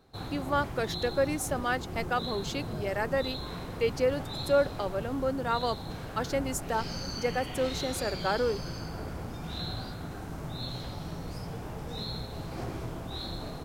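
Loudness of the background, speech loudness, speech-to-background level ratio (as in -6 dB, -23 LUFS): -38.0 LUFS, -31.5 LUFS, 6.5 dB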